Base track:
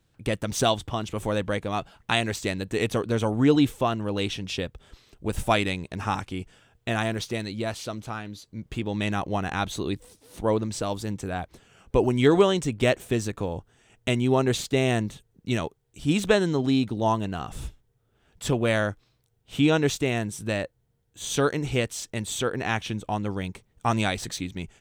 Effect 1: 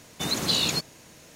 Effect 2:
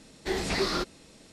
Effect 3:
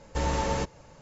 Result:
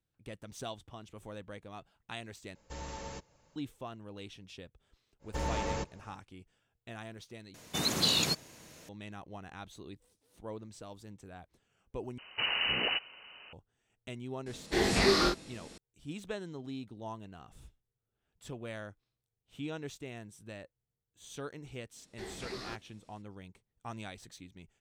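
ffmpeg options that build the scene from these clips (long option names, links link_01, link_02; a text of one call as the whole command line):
ffmpeg -i bed.wav -i cue0.wav -i cue1.wav -i cue2.wav -filter_complex "[3:a]asplit=2[link_01][link_02];[1:a]asplit=2[link_03][link_04];[2:a]asplit=2[link_05][link_06];[0:a]volume=-19dB[link_07];[link_01]highshelf=frequency=2600:gain=6[link_08];[link_04]lowpass=frequency=2600:width_type=q:width=0.5098,lowpass=frequency=2600:width_type=q:width=0.6013,lowpass=frequency=2600:width_type=q:width=0.9,lowpass=frequency=2600:width_type=q:width=2.563,afreqshift=-3100[link_09];[link_05]aecho=1:1:20|43:0.631|0.668[link_10];[link_07]asplit=4[link_11][link_12][link_13][link_14];[link_11]atrim=end=2.554[link_15];[link_08]atrim=end=1.01,asetpts=PTS-STARTPTS,volume=-16dB[link_16];[link_12]atrim=start=3.556:end=7.544[link_17];[link_03]atrim=end=1.35,asetpts=PTS-STARTPTS,volume=-3.5dB[link_18];[link_13]atrim=start=8.886:end=12.184[link_19];[link_09]atrim=end=1.35[link_20];[link_14]atrim=start=13.526[link_21];[link_02]atrim=end=1.01,asetpts=PTS-STARTPTS,volume=-6.5dB,afade=type=in:duration=0.1,afade=type=out:start_time=0.91:duration=0.1,adelay=5190[link_22];[link_10]atrim=end=1.32,asetpts=PTS-STARTPTS,volume=-0.5dB,afade=type=in:duration=0.004:curve=hsin,afade=type=out:start_time=1.316:duration=0.004:curve=hsin,adelay=14460[link_23];[link_06]atrim=end=1.32,asetpts=PTS-STARTPTS,volume=-14.5dB,afade=type=in:duration=0.05,afade=type=out:start_time=1.27:duration=0.05,adelay=21920[link_24];[link_15][link_16]acrossfade=duration=0.004:curve1=hsin:curve2=hsin[link_25];[link_25][link_17]acrossfade=duration=0.004:curve1=hsin:curve2=hsin[link_26];[link_26][link_18]acrossfade=duration=0.004:curve1=hsin:curve2=hsin[link_27];[link_27][link_19]acrossfade=duration=0.004:curve1=hsin:curve2=hsin[link_28];[link_28][link_20]acrossfade=duration=0.004:curve1=hsin:curve2=hsin[link_29];[link_29][link_21]acrossfade=duration=0.004:curve1=hsin:curve2=hsin[link_30];[link_30][link_22][link_23][link_24]amix=inputs=4:normalize=0" out.wav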